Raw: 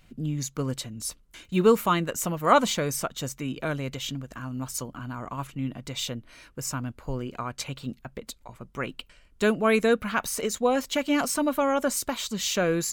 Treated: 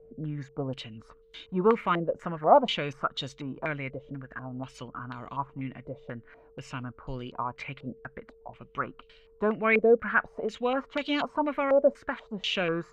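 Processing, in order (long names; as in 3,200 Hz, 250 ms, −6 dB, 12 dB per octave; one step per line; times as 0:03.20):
steady tone 450 Hz −53 dBFS
low-pass on a step sequencer 4.1 Hz 570–3,700 Hz
level −5.5 dB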